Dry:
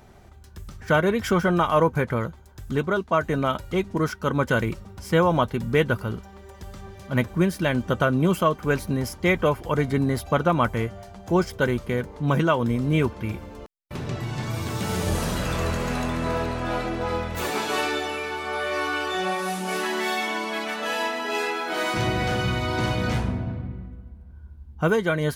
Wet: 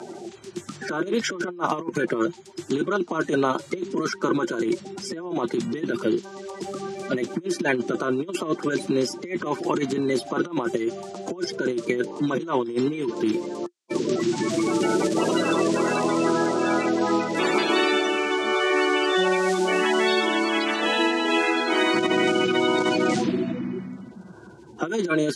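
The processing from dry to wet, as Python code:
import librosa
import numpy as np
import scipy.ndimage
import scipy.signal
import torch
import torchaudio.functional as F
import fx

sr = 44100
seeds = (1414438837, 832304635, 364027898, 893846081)

y = fx.spec_quant(x, sr, step_db=30)
y = scipy.signal.sosfilt(scipy.signal.butter(4, 7900.0, 'lowpass', fs=sr, output='sos'), y)
y = fx.peak_eq(y, sr, hz=350.0, db=14.5, octaves=0.27)
y = fx.over_compress(y, sr, threshold_db=-22.0, ratio=-0.5)
y = scipy.signal.sosfilt(scipy.signal.butter(4, 170.0, 'highpass', fs=sr, output='sos'), y)
y = fx.high_shelf(y, sr, hz=4000.0, db=6.5)
y = fx.band_squash(y, sr, depth_pct=40)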